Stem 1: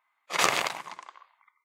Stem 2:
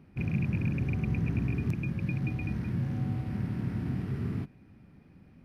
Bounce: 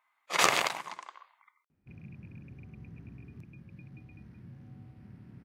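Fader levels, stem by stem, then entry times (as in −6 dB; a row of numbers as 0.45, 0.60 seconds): −0.5, −18.5 decibels; 0.00, 1.70 seconds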